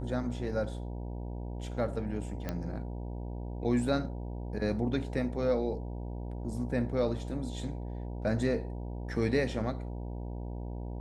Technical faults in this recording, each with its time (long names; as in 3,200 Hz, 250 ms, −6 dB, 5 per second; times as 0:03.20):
mains buzz 60 Hz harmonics 16 −38 dBFS
0:02.49: click −20 dBFS